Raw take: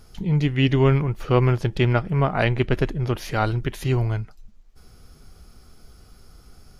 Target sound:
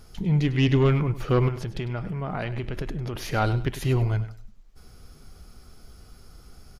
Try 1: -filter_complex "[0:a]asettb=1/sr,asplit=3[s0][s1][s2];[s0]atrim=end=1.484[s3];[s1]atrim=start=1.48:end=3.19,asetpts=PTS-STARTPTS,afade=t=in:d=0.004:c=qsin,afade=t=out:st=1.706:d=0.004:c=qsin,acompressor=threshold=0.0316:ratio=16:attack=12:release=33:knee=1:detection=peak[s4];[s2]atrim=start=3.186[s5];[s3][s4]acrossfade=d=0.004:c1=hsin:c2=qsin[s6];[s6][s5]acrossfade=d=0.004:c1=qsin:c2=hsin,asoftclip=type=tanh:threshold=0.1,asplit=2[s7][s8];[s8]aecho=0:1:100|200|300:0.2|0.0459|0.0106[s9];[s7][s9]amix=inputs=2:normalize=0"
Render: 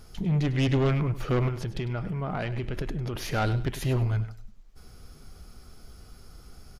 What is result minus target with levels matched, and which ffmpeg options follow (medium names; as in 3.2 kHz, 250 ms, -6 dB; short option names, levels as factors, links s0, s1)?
saturation: distortion +7 dB
-filter_complex "[0:a]asettb=1/sr,asplit=3[s0][s1][s2];[s0]atrim=end=1.484[s3];[s1]atrim=start=1.48:end=3.19,asetpts=PTS-STARTPTS,afade=t=in:d=0.004:c=qsin,afade=t=out:st=1.706:d=0.004:c=qsin,acompressor=threshold=0.0316:ratio=16:attack=12:release=33:knee=1:detection=peak[s4];[s2]atrim=start=3.186[s5];[s3][s4]acrossfade=d=0.004:c1=hsin:c2=qsin[s6];[s6][s5]acrossfade=d=0.004:c1=qsin:c2=hsin,asoftclip=type=tanh:threshold=0.237,asplit=2[s7][s8];[s8]aecho=0:1:100|200|300:0.2|0.0459|0.0106[s9];[s7][s9]amix=inputs=2:normalize=0"